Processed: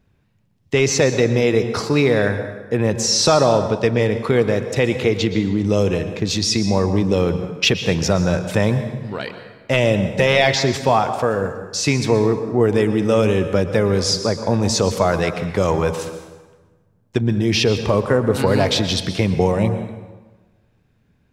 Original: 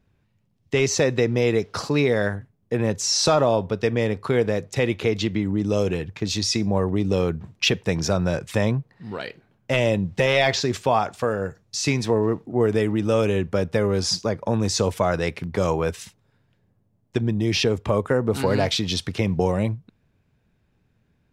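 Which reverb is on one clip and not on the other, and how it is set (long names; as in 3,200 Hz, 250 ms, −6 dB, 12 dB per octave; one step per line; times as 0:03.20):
dense smooth reverb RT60 1.3 s, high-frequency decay 0.7×, pre-delay 105 ms, DRR 9 dB
level +4 dB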